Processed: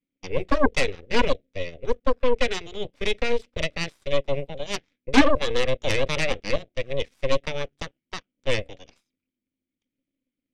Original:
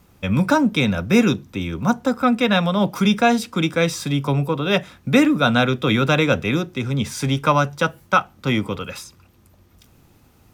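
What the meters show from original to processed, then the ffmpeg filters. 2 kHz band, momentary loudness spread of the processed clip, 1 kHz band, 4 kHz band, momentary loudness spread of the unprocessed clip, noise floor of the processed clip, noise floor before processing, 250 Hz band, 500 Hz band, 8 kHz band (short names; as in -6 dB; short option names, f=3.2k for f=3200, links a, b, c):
-6.0 dB, 11 LU, -8.5 dB, -4.5 dB, 7 LU, under -85 dBFS, -54 dBFS, -11.0 dB, -3.0 dB, -6.0 dB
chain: -filter_complex "[0:a]asplit=3[a][b][c];[a]bandpass=f=270:t=q:w=8,volume=0dB[d];[b]bandpass=f=2.29k:t=q:w=8,volume=-6dB[e];[c]bandpass=f=3.01k:t=q:w=8,volume=-9dB[f];[d][e][f]amix=inputs=3:normalize=0,aeval=exprs='0.299*(cos(1*acos(clip(val(0)/0.299,-1,1)))-cos(1*PI/2))+0.106*(cos(3*acos(clip(val(0)/0.299,-1,1)))-cos(3*PI/2))+0.0075*(cos(5*acos(clip(val(0)/0.299,-1,1)))-cos(5*PI/2))+0.075*(cos(8*acos(clip(val(0)/0.299,-1,1)))-cos(8*PI/2))':c=same,volume=5dB"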